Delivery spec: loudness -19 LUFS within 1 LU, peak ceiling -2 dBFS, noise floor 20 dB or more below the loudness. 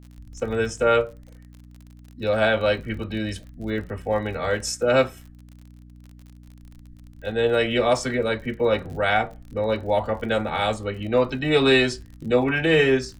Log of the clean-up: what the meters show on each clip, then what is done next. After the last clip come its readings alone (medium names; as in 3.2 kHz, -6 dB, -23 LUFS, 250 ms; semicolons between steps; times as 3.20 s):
tick rate 46 per s; hum 60 Hz; highest harmonic 300 Hz; hum level -43 dBFS; loudness -23.0 LUFS; peak level -7.5 dBFS; loudness target -19.0 LUFS
-> de-click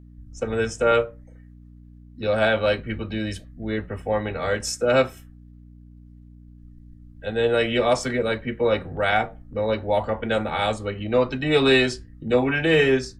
tick rate 0 per s; hum 60 Hz; highest harmonic 300 Hz; hum level -43 dBFS
-> de-hum 60 Hz, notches 5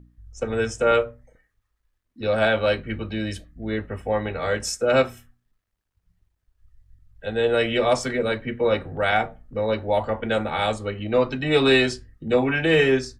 hum not found; loudness -23.0 LUFS; peak level -7.0 dBFS; loudness target -19.0 LUFS
-> trim +4 dB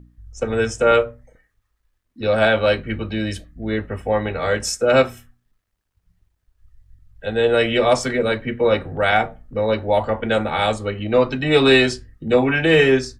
loudness -19.0 LUFS; peak level -3.0 dBFS; noise floor -72 dBFS